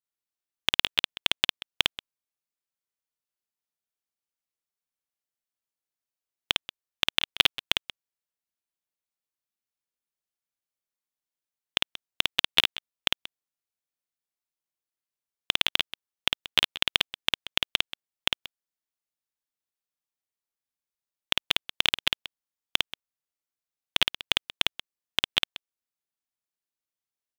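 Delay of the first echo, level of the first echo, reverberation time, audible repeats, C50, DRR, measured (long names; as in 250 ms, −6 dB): 53 ms, −3.0 dB, no reverb audible, 2, no reverb audible, no reverb audible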